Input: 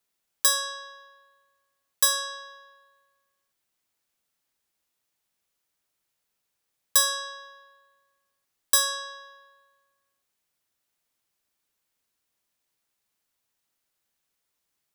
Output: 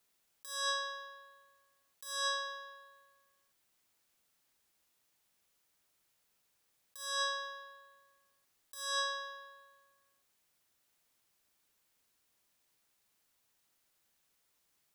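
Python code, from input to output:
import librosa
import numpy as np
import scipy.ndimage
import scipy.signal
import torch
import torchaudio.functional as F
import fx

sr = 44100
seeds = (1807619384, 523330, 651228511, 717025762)

y = fx.highpass(x, sr, hz=140.0, slope=12, at=(2.05, 2.47))
y = fx.over_compress(y, sr, threshold_db=-35.0, ratio=-1.0)
y = y * 10.0 ** (-4.0 / 20.0)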